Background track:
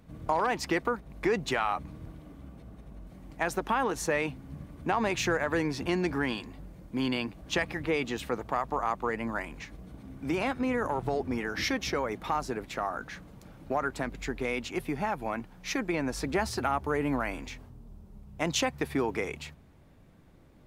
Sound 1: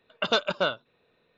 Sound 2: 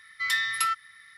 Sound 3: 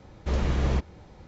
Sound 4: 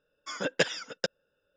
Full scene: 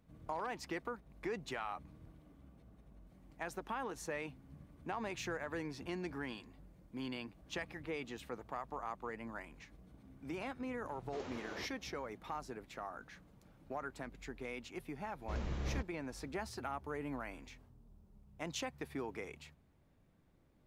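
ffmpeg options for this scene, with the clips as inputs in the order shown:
-filter_complex "[3:a]asplit=2[a][b];[0:a]volume=-13dB[c];[a]highpass=f=290:w=0.5412,highpass=f=290:w=1.3066,atrim=end=1.27,asetpts=PTS-STARTPTS,volume=-14dB,afade=t=in:d=0.004:c=hsin,afade=t=out:st=1.266:d=0.004:c=hsin,adelay=10860[d];[b]atrim=end=1.27,asetpts=PTS-STARTPTS,volume=-14dB,afade=t=in:d=0.004:c=hsin,afade=t=out:st=1.266:d=0.004:c=hsin,adelay=15020[e];[c][d][e]amix=inputs=3:normalize=0"

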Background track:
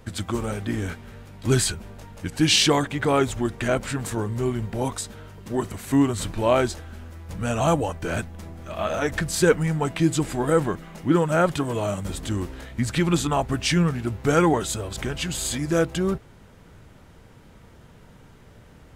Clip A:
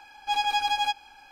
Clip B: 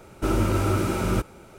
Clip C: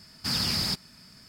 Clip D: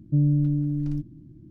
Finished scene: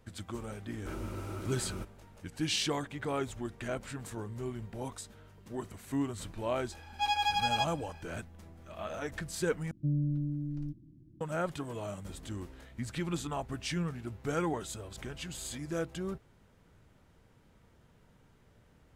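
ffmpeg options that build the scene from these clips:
-filter_complex "[0:a]volume=-13.5dB,asplit=2[a][b];[a]atrim=end=9.714[c];[4:a]atrim=end=1.5,asetpts=PTS-STARTPTS,volume=-10dB[d];[b]atrim=start=11.206[e];[2:a]atrim=end=1.58,asetpts=PTS-STARTPTS,volume=-17.5dB,afade=t=in:d=0.004:c=hsin,afade=t=out:st=1.576:d=0.004:c=hsin,adelay=630[f];[1:a]atrim=end=1.31,asetpts=PTS-STARTPTS,volume=-4.5dB,afade=t=in:d=0.004:c=hsin,afade=t=out:st=1.306:d=0.004:c=hsin,adelay=6720[g];[c][d]acrossfade=d=0.004:c1=hsin:c2=hsin[h];[h][e]acrossfade=d=0.004:c1=hsin:c2=hsin[i];[i][f][g]amix=inputs=3:normalize=0"

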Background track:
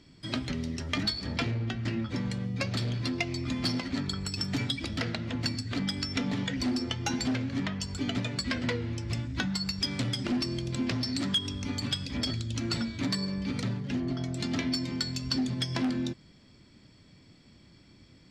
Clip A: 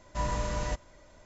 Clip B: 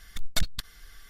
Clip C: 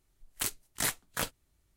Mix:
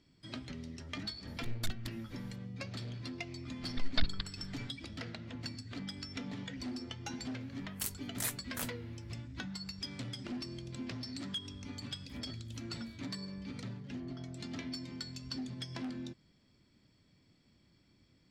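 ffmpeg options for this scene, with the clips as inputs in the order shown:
-filter_complex "[2:a]asplit=2[a][b];[3:a]asplit=2[c][d];[0:a]volume=-11.5dB[e];[b]aresample=11025,aresample=44100[f];[c]highshelf=f=8.4k:g=8[g];[d]acompressor=threshold=-53dB:ratio=6:attack=3.2:release=140:knee=1:detection=peak[h];[a]atrim=end=1.09,asetpts=PTS-STARTPTS,volume=-12dB,afade=t=in:d=0.004:c=hsin,afade=t=out:st=1.086:d=0.004:c=hsin,adelay=1270[i];[f]atrim=end=1.09,asetpts=PTS-STARTPTS,volume=-4dB,afade=t=in:d=0.004:c=hsin,afade=t=out:st=1.086:d=0.004:c=hsin,adelay=159201S[j];[g]atrim=end=1.76,asetpts=PTS-STARTPTS,volume=-9.5dB,afade=t=in:d=0.004:c=hsin,afade=t=out:st=1.756:d=0.004:c=hsin,adelay=7400[k];[h]atrim=end=1.76,asetpts=PTS-STARTPTS,volume=-16.5dB,afade=t=in:d=0.004:c=hsin,afade=t=out:st=1.756:d=0.004:c=hsin,adelay=515970S[l];[e][i][j][k][l]amix=inputs=5:normalize=0"

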